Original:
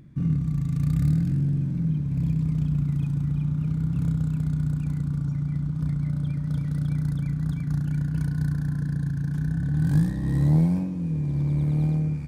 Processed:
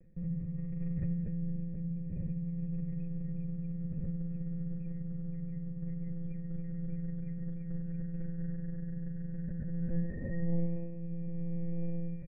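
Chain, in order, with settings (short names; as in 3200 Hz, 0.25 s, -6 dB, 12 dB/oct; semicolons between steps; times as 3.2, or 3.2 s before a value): monotone LPC vocoder at 8 kHz 170 Hz; vocal tract filter e; tilt -2 dB/oct; on a send: echo 71 ms -22 dB; on the sum: gain +1.5 dB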